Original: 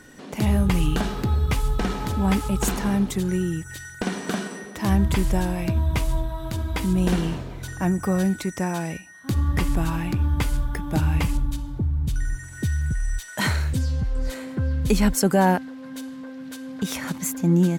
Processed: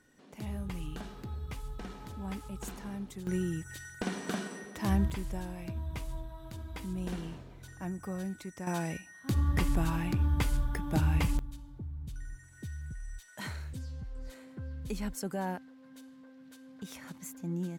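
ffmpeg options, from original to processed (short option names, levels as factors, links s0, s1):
-af "asetnsamples=n=441:p=0,asendcmd='3.27 volume volume -8dB;5.1 volume volume -15.5dB;8.67 volume volume -6dB;11.39 volume volume -17dB',volume=0.126"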